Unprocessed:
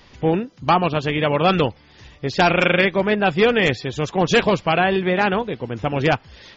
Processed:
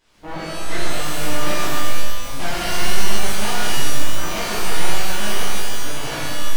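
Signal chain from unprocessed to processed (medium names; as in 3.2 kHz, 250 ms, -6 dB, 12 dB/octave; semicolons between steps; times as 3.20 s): de-hum 90.6 Hz, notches 29; full-wave rectifier; pitch-shifted reverb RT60 1.5 s, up +12 st, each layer -2 dB, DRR -10 dB; trim -15.5 dB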